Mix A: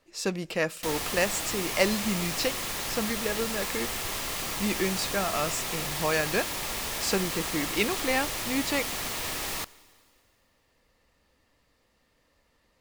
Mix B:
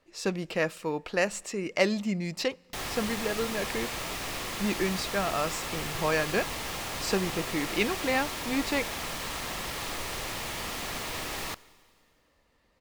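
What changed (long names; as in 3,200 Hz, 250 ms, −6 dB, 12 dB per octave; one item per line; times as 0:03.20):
background: entry +1.90 s
master: add high-shelf EQ 5,500 Hz −7.5 dB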